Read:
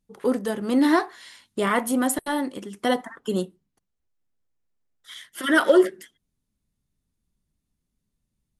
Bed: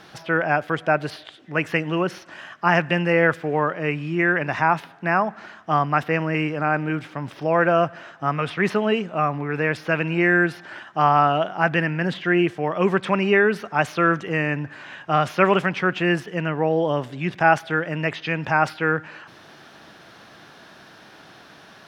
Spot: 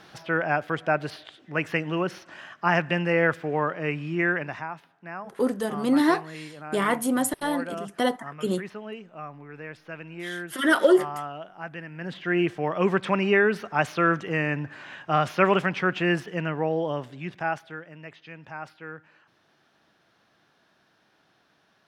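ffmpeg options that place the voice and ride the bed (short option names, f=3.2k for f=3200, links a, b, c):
-filter_complex "[0:a]adelay=5150,volume=-1.5dB[a];[1:a]volume=10dB,afade=t=out:st=4.27:d=0.41:silence=0.223872,afade=t=in:st=11.9:d=0.61:silence=0.199526,afade=t=out:st=16.28:d=1.6:silence=0.16788[b];[a][b]amix=inputs=2:normalize=0"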